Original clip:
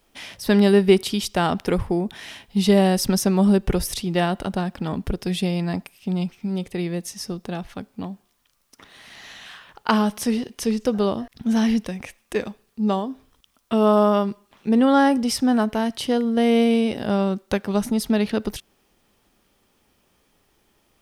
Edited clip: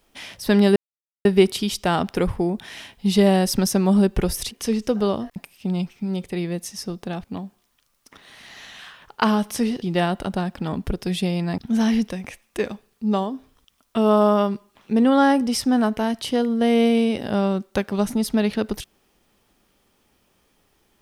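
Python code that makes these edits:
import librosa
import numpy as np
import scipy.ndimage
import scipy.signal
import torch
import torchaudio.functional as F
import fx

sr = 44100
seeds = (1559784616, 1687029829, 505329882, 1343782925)

y = fx.edit(x, sr, fx.insert_silence(at_s=0.76, length_s=0.49),
    fx.swap(start_s=4.02, length_s=1.76, other_s=10.49, other_length_s=0.85),
    fx.cut(start_s=7.66, length_s=0.25), tone=tone)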